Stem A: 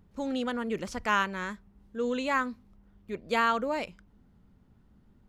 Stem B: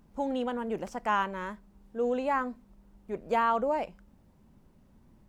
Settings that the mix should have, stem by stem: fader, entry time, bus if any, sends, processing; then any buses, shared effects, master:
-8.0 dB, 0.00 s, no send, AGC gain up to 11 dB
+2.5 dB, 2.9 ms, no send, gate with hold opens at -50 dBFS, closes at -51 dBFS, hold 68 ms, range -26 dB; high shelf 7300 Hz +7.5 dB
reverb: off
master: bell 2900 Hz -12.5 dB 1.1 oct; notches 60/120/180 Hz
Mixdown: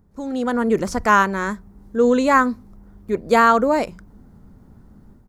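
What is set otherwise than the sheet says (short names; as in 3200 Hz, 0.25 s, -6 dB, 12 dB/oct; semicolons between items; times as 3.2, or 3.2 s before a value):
stem A -8.0 dB -> +4.0 dB; stem B +2.5 dB -> -6.0 dB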